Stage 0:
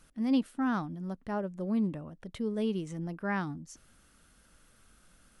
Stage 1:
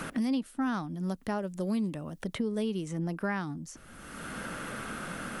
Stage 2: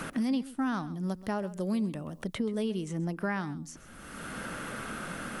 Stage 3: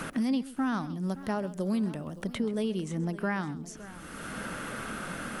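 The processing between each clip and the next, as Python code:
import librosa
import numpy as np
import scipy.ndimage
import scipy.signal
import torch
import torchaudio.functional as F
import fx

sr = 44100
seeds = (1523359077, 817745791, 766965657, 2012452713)

y1 = fx.high_shelf(x, sr, hz=4700.0, db=8.5)
y1 = fx.band_squash(y1, sr, depth_pct=100)
y2 = y1 + 10.0 ** (-17.0 / 20.0) * np.pad(y1, (int(131 * sr / 1000.0), 0))[:len(y1)]
y3 = fx.echo_warbled(y2, sr, ms=566, feedback_pct=47, rate_hz=2.8, cents=129, wet_db=-17)
y3 = F.gain(torch.from_numpy(y3), 1.0).numpy()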